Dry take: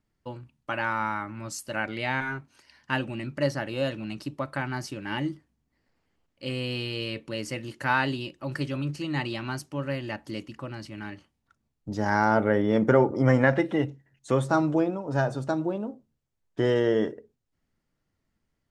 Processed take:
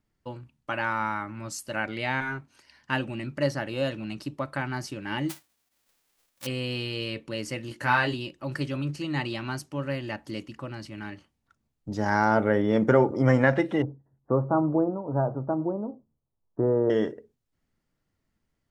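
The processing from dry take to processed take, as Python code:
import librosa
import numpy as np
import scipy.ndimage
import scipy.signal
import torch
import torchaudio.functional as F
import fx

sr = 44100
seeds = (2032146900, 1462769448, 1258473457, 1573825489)

y = fx.envelope_flatten(x, sr, power=0.1, at=(5.29, 6.45), fade=0.02)
y = fx.doubler(y, sr, ms=17.0, db=-4.0, at=(7.69, 8.14))
y = fx.steep_lowpass(y, sr, hz=1200.0, slope=36, at=(13.82, 16.9))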